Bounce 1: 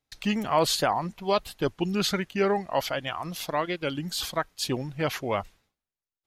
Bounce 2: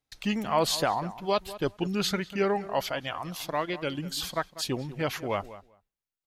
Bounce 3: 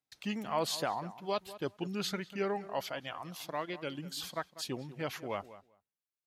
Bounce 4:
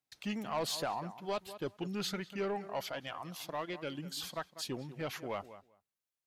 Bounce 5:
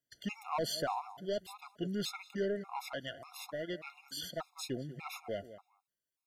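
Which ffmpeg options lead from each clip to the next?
-filter_complex "[0:a]asplit=2[a][b];[b]adelay=195,lowpass=f=2.1k:p=1,volume=-15dB,asplit=2[c][d];[d]adelay=195,lowpass=f=2.1k:p=1,volume=0.15[e];[a][c][e]amix=inputs=3:normalize=0,volume=-2dB"
-af "highpass=110,volume=-7.5dB"
-af "asoftclip=type=tanh:threshold=-27.5dB"
-af "afftfilt=real='re*gt(sin(2*PI*1.7*pts/sr)*(1-2*mod(floor(b*sr/1024/700),2)),0)':imag='im*gt(sin(2*PI*1.7*pts/sr)*(1-2*mod(floor(b*sr/1024/700),2)),0)':win_size=1024:overlap=0.75,volume=2dB"

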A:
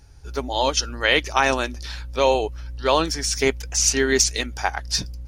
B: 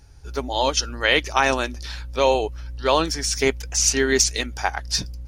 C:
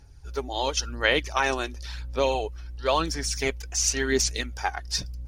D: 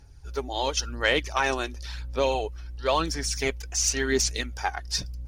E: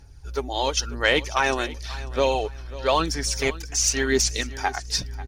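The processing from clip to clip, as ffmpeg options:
-af anull
-af "aphaser=in_gain=1:out_gain=1:delay=2.8:decay=0.41:speed=0.94:type=sinusoidal,volume=-6dB"
-af "asoftclip=type=tanh:threshold=-9.5dB"
-af "aecho=1:1:542|1084|1626:0.133|0.04|0.012,volume=3dB"

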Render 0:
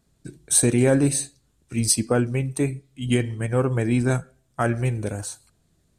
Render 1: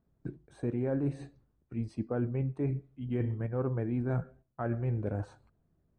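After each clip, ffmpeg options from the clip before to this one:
-af "agate=range=-7dB:threshold=-52dB:ratio=16:detection=peak,areverse,acompressor=threshold=-29dB:ratio=6,areverse,lowpass=1.2k"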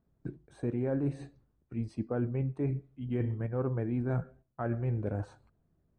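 -af anull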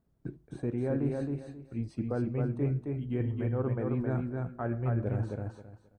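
-af "aecho=1:1:267|534|801:0.668|0.147|0.0323"

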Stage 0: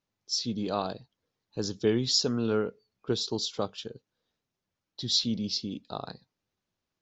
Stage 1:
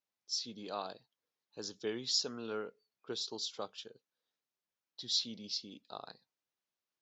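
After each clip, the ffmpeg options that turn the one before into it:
-af "highpass=f=670:p=1,volume=-6.5dB"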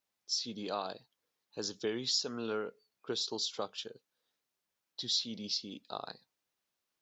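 -af "acompressor=threshold=-39dB:ratio=2,volume=6dB"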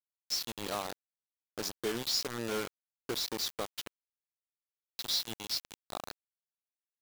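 -af "acrusher=bits=5:mix=0:aa=0.000001"

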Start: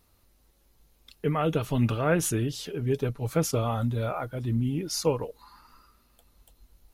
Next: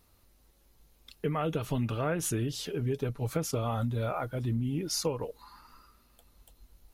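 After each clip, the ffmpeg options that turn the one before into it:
-af "acompressor=threshold=-27dB:ratio=5"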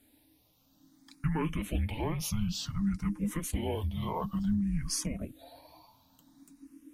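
-filter_complex "[0:a]afreqshift=-320,asplit=2[a][b];[b]afreqshift=0.56[c];[a][c]amix=inputs=2:normalize=1,volume=3dB"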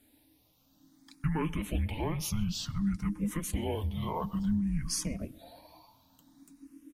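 -filter_complex "[0:a]asplit=2[a][b];[b]adelay=129,lowpass=f=3.1k:p=1,volume=-22dB,asplit=2[c][d];[d]adelay=129,lowpass=f=3.1k:p=1,volume=0.53,asplit=2[e][f];[f]adelay=129,lowpass=f=3.1k:p=1,volume=0.53,asplit=2[g][h];[h]adelay=129,lowpass=f=3.1k:p=1,volume=0.53[i];[a][c][e][g][i]amix=inputs=5:normalize=0"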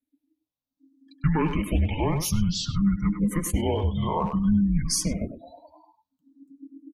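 -filter_complex "[0:a]afftdn=nr=35:nf=-46,asplit=2[a][b];[b]adelay=100,highpass=300,lowpass=3.4k,asoftclip=type=hard:threshold=-28.5dB,volume=-7dB[c];[a][c]amix=inputs=2:normalize=0,volume=8dB"

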